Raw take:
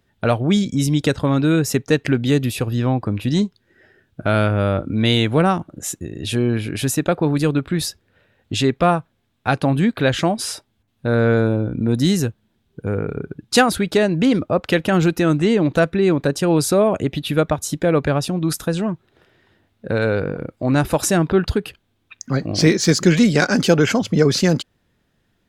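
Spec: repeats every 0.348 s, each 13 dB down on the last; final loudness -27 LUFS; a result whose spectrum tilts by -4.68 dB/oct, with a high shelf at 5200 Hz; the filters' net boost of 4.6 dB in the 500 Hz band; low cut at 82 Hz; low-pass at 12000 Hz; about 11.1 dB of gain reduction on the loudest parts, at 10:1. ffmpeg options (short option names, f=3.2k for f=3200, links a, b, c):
-af "highpass=82,lowpass=12k,equalizer=f=500:t=o:g=5.5,highshelf=f=5.2k:g=7.5,acompressor=threshold=-17dB:ratio=10,aecho=1:1:348|696|1044:0.224|0.0493|0.0108,volume=-4.5dB"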